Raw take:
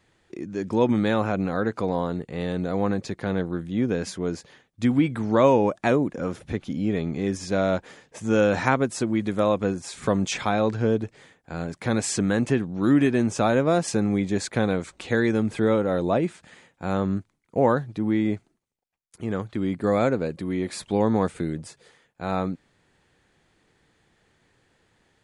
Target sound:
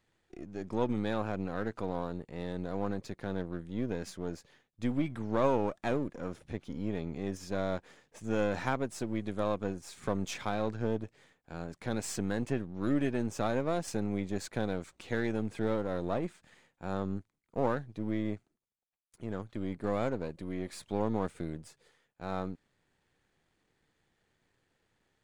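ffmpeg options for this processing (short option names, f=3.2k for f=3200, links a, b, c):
-af "aeval=exprs='if(lt(val(0),0),0.447*val(0),val(0))':c=same,volume=-8.5dB"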